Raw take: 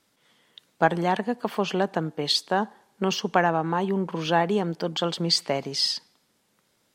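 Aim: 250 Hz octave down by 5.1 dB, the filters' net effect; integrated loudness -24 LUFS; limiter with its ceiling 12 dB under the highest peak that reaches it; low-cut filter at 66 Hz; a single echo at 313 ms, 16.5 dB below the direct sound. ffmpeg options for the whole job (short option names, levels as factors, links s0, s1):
-af "highpass=66,equalizer=f=250:t=o:g=-8.5,alimiter=limit=0.126:level=0:latency=1,aecho=1:1:313:0.15,volume=2"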